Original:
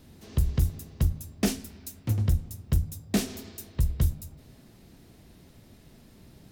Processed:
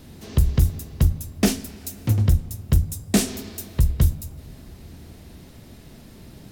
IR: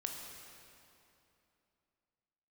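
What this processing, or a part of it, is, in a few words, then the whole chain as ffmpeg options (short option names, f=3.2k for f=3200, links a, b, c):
compressed reverb return: -filter_complex "[0:a]asplit=2[a][b];[1:a]atrim=start_sample=2205[c];[b][c]afir=irnorm=-1:irlink=0,acompressor=threshold=-38dB:ratio=6,volume=-7.5dB[d];[a][d]amix=inputs=2:normalize=0,asettb=1/sr,asplit=3[e][f][g];[e]atrim=end=2.904[h];[f]atrim=start=2.9:end=3.3,asetpts=PTS-STARTPTS,afade=t=in:d=0.004:c=qsin,afade=t=out:st=0.396:d=0.004:c=qsin,equalizer=f=8.5k:t=o:w=0.77:g=5.5[i];[g]atrim=start=3.296[j];[h][i]acrossfade=d=0.004:c1=hsin:c2=qsin[k];[k][j]acrossfade=d=0.004:c1=qsin:c2=hsin,volume=6dB"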